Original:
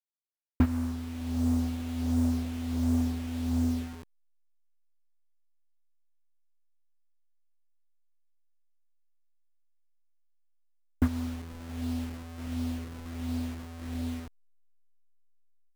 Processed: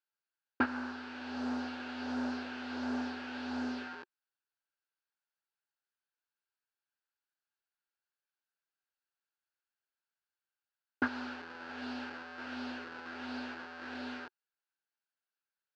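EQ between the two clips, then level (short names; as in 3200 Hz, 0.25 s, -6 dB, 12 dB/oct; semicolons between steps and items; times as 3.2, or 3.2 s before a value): speaker cabinet 320–5100 Hz, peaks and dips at 370 Hz +6 dB, 540 Hz +3 dB, 860 Hz +9 dB, 1400 Hz +10 dB, 2700 Hz +7 dB, 4500 Hz +7 dB; bell 1600 Hz +12 dB 0.26 oct; -3.5 dB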